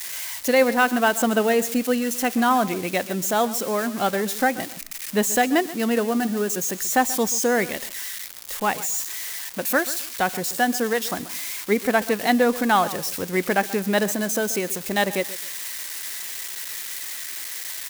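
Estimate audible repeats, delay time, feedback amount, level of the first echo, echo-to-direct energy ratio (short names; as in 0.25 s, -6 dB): 2, 0.133 s, 25%, -16.5 dB, -16.0 dB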